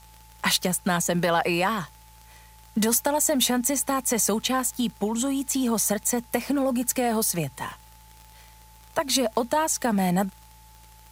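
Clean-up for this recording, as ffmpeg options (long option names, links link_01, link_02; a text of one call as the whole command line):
ffmpeg -i in.wav -af "adeclick=threshold=4,bandreject=frequency=56.2:width_type=h:width=4,bandreject=frequency=112.4:width_type=h:width=4,bandreject=frequency=168.6:width_type=h:width=4,bandreject=frequency=870:width=30,agate=range=-21dB:threshold=-43dB" out.wav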